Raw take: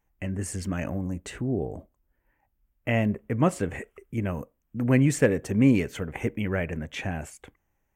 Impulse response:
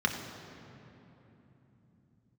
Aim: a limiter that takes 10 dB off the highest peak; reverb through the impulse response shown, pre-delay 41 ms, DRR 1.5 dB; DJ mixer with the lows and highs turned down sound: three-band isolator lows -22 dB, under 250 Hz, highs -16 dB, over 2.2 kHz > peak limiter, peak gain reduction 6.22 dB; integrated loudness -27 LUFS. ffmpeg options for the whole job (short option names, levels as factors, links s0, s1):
-filter_complex "[0:a]alimiter=limit=0.126:level=0:latency=1,asplit=2[s0][s1];[1:a]atrim=start_sample=2205,adelay=41[s2];[s1][s2]afir=irnorm=-1:irlink=0,volume=0.266[s3];[s0][s3]amix=inputs=2:normalize=0,acrossover=split=250 2200:gain=0.0794 1 0.158[s4][s5][s6];[s4][s5][s6]amix=inputs=3:normalize=0,volume=2.51,alimiter=limit=0.168:level=0:latency=1"